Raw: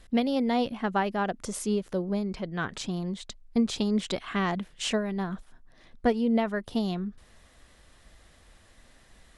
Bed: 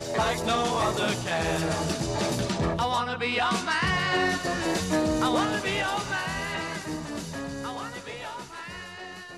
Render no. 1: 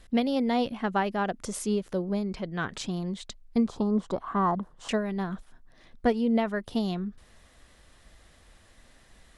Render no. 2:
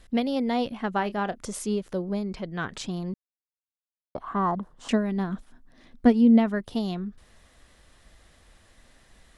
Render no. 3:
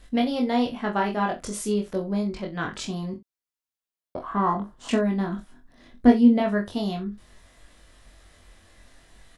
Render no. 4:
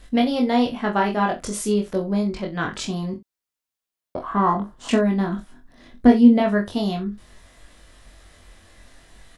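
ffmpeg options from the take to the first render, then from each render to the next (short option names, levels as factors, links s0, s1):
-filter_complex "[0:a]asettb=1/sr,asplit=3[s0][s1][s2];[s0]atrim=end=3.684[s3];[s1]atrim=start=3.68:end=4.89,asetpts=PTS-STARTPTS,afade=t=in:d=0.004:c=qsin,afade=t=out:st=1.206:d=0.004:c=qsin,highshelf=f=1600:t=q:w=3:g=-13.5[s4];[s2]atrim=start=4.886[s5];[s3][s4]acrossfade=d=0.004:c1=hsin:c2=qsin[s6];[s6][s5]acrossfade=d=0.004:c1=qsin:c2=hsin"
-filter_complex "[0:a]asettb=1/sr,asplit=3[s0][s1][s2];[s0]atrim=end=0.954[s3];[s1]atrim=start=0.95:end=1.45,asetpts=PTS-STARTPTS,afade=t=in:d=0.004:c=qsin,afade=t=out:st=0.496:d=0.004:c=qsin,asplit=2[s4][s5];[s5]adelay=29,volume=0.2[s6];[s4][s6]amix=inputs=2:normalize=0,atrim=end_sample=22050[s7];[s2]atrim=start=1.446[s8];[s3][s7]acrossfade=d=0.004:c1=hsin:c2=qsin[s9];[s9][s8]acrossfade=d=0.004:c1=qsin:c2=hsin,asettb=1/sr,asplit=3[s10][s11][s12];[s10]atrim=end=4.774[s13];[s11]atrim=start=4.77:end=6.61,asetpts=PTS-STARTPTS,afade=t=in:d=0.004:c=qsin,afade=t=out:st=1.836:d=0.004:c=qsin,equalizer=f=250:t=o:w=0.54:g=10.5[s14];[s12]atrim=start=6.606[s15];[s13][s14]acrossfade=d=0.004:c1=hsin:c2=qsin[s16];[s16][s15]acrossfade=d=0.004:c1=qsin:c2=hsin,asplit=3[s17][s18][s19];[s17]atrim=end=3.14,asetpts=PTS-STARTPTS,afade=t=out:st=3.136:d=0.004:c=hsin[s20];[s18]atrim=start=3.14:end=4.15,asetpts=PTS-STARTPTS,volume=0[s21];[s19]atrim=start=4.15,asetpts=PTS-STARTPTS,afade=t=in:d=0.004:c=hsin[s22];[s20][s21][s22]concat=n=3:v=0:a=1"
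-filter_complex "[0:a]asplit=2[s0][s1];[s1]adelay=24,volume=0.596[s2];[s0][s2]amix=inputs=2:normalize=0,asplit=2[s3][s4];[s4]aecho=0:1:21|64:0.531|0.178[s5];[s3][s5]amix=inputs=2:normalize=0"
-af "volume=1.58,alimiter=limit=0.708:level=0:latency=1"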